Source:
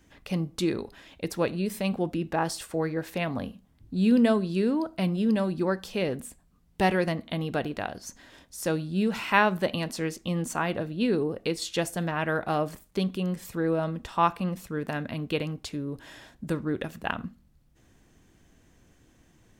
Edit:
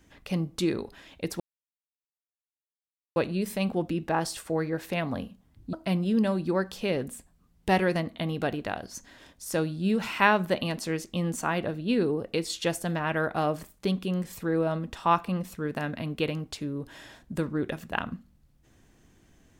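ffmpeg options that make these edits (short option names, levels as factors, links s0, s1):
-filter_complex "[0:a]asplit=3[s0][s1][s2];[s0]atrim=end=1.4,asetpts=PTS-STARTPTS,afade=t=out:st=1.396:d=0.004:c=hsin,apad=pad_dur=1.76[s3];[s1]atrim=start=1.4:end=3.972,asetpts=PTS-STARTPTS,afade=t=in:d=0.004:c=hsin[s4];[s2]atrim=start=4.848[s5];[s3][s4]concat=n=2:v=0:a=1[s6];[s6][s5]acrossfade=d=0.004:c1=hsin:c2=hsin"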